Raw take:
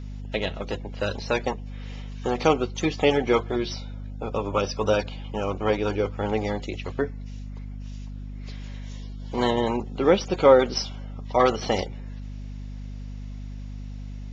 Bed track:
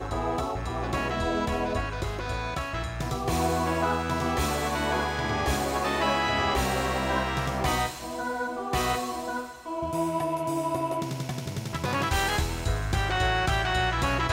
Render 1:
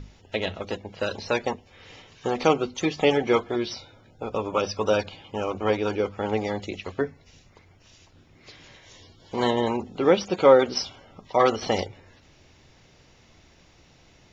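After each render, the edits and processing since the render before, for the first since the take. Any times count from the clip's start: notches 50/100/150/200/250 Hz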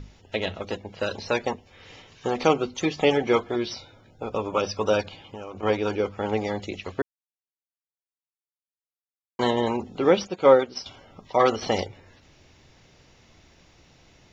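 5.01–5.63 compressor 5:1, threshold -34 dBFS; 7.02–9.39 mute; 10.27–10.86 upward expander, over -34 dBFS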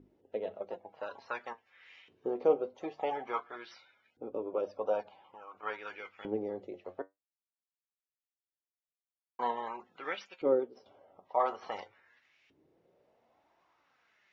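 LFO band-pass saw up 0.48 Hz 320–2500 Hz; flange 0.22 Hz, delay 2.7 ms, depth 8.7 ms, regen +65%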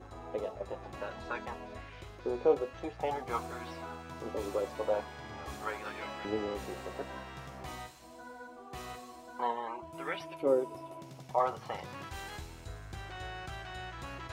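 add bed track -17.5 dB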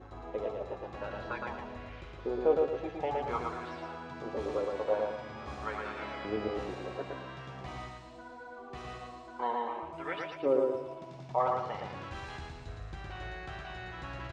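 air absorption 120 m; feedback echo 0.114 s, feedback 38%, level -3 dB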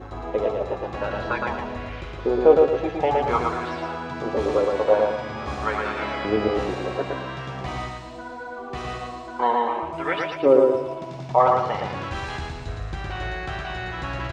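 gain +12 dB

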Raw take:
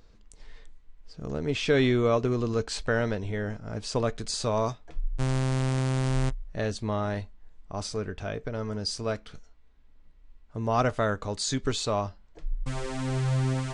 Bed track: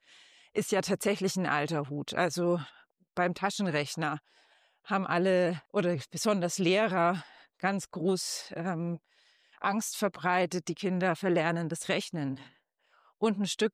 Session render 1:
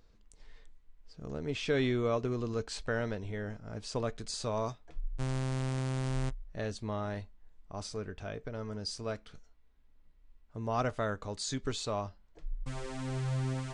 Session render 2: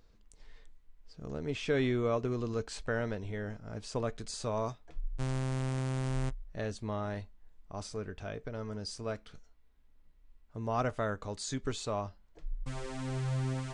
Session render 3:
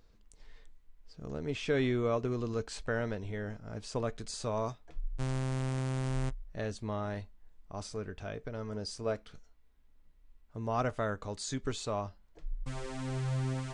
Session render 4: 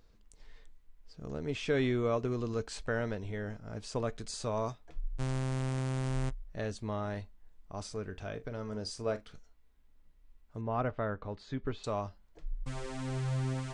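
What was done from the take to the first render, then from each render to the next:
gain -7 dB
dynamic EQ 4300 Hz, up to -4 dB, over -51 dBFS, Q 1.3
8.71–9.22 dynamic EQ 510 Hz, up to +5 dB, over -47 dBFS, Q 0.9
8.05–9.24 doubler 42 ms -14 dB; 10.61–11.84 air absorption 340 m

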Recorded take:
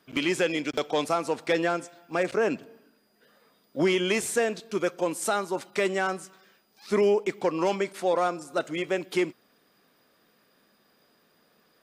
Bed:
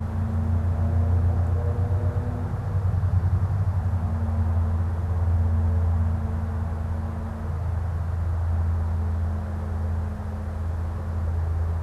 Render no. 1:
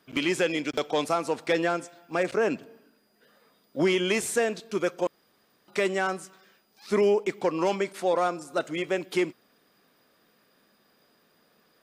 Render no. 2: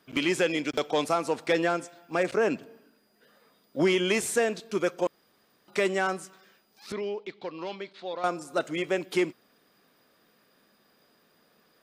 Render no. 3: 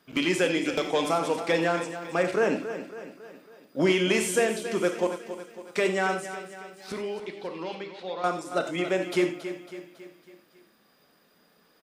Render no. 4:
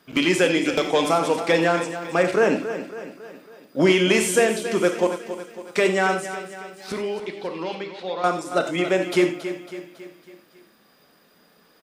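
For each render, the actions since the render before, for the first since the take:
5.07–5.68 room tone
6.92–8.24 ladder low-pass 4400 Hz, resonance 65%
on a send: feedback echo 0.276 s, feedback 51%, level -11.5 dB; on the sum: non-linear reverb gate 0.12 s flat, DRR 5.5 dB
gain +5.5 dB

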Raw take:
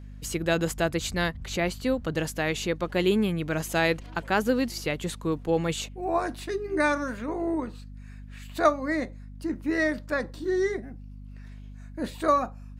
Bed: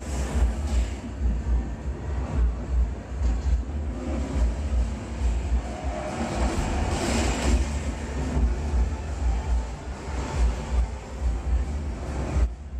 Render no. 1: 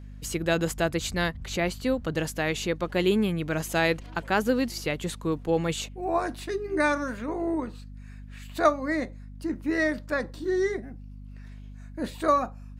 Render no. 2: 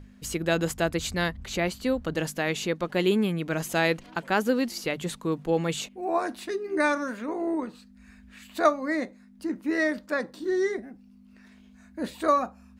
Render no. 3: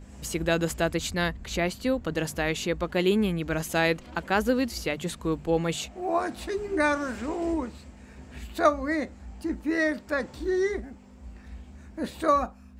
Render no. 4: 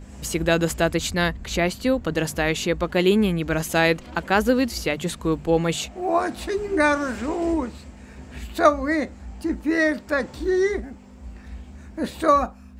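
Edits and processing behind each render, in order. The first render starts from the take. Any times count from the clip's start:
nothing audible
notches 50/100/150 Hz
add bed -18.5 dB
gain +5 dB

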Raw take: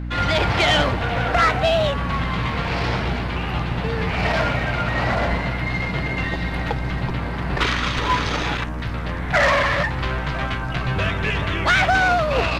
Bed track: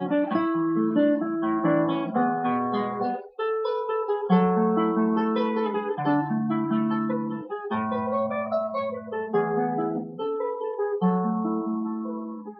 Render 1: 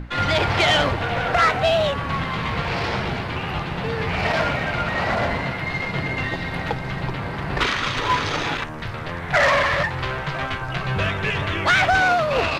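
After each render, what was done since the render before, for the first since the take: notches 60/120/180/240/300 Hz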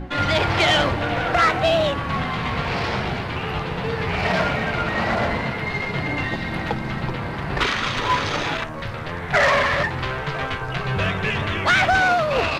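add bed track -10 dB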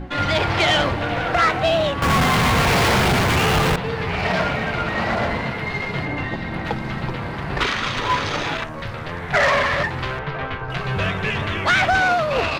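2.02–3.76 power-law curve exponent 0.35; 6.05–6.65 high shelf 2900 Hz -7.5 dB; 10.19–10.7 air absorption 220 m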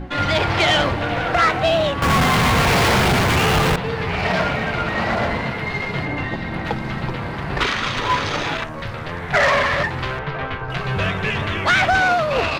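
gain +1 dB

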